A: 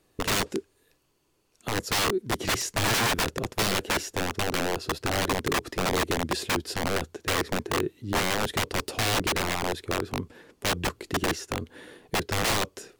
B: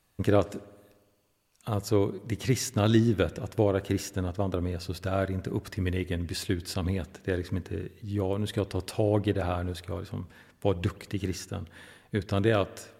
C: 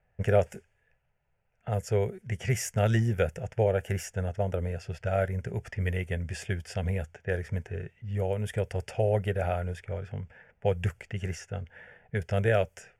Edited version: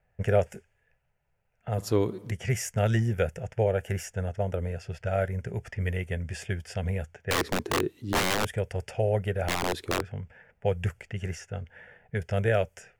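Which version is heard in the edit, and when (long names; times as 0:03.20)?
C
0:01.78–0:02.31: punch in from B
0:07.31–0:08.45: punch in from A
0:09.48–0:10.02: punch in from A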